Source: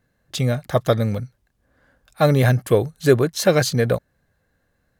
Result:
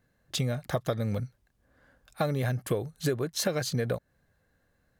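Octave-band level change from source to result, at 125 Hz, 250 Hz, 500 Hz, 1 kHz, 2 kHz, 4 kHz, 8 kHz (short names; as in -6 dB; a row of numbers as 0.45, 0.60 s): -11.0, -11.0, -13.0, -11.0, -11.5, -7.0, -6.5 dB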